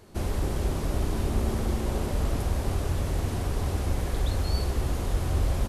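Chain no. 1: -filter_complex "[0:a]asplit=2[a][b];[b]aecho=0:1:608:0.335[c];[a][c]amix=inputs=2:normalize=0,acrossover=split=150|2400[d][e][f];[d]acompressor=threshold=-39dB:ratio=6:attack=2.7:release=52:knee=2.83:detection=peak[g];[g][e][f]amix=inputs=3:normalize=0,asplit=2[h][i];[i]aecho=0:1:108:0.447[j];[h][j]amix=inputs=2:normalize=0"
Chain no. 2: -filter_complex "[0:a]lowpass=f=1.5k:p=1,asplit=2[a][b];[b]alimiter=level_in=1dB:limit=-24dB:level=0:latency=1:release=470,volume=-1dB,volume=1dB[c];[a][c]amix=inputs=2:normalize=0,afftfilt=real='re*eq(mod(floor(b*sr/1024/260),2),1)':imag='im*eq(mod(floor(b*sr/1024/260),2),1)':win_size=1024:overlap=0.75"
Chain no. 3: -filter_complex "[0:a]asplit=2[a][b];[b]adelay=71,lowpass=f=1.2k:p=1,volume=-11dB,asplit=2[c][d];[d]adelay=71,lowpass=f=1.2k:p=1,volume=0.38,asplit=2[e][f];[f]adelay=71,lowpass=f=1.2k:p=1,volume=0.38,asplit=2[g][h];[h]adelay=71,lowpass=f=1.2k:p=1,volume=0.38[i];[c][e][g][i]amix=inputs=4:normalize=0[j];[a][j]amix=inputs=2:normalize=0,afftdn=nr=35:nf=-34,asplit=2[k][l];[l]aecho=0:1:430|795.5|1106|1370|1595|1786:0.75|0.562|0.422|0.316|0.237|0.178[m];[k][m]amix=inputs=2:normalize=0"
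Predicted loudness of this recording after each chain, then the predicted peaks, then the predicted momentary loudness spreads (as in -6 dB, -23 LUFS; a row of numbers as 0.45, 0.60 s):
-33.0, -35.5, -26.5 LUFS; -19.0, -21.5, -9.5 dBFS; 3, 3, 3 LU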